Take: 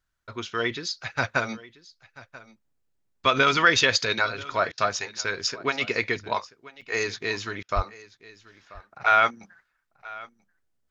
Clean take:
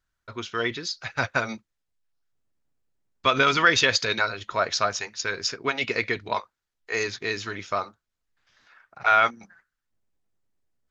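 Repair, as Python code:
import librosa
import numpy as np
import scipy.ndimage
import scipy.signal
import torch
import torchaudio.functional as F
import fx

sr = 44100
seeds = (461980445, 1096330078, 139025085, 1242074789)

y = fx.highpass(x, sr, hz=140.0, slope=24, at=(7.75, 7.87), fade=0.02)
y = fx.fix_interpolate(y, sr, at_s=(6.81,), length_ms=5.4)
y = fx.fix_interpolate(y, sr, at_s=(4.72, 7.63), length_ms=56.0)
y = fx.fix_echo_inverse(y, sr, delay_ms=986, level_db=-20.0)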